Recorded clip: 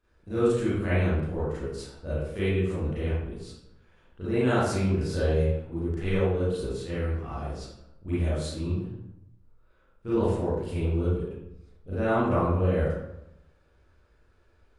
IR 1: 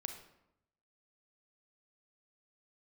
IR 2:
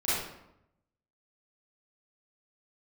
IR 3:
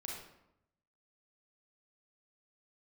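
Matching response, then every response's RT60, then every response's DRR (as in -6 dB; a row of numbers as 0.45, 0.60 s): 2; 0.85, 0.85, 0.85 s; 5.5, -12.0, -2.5 dB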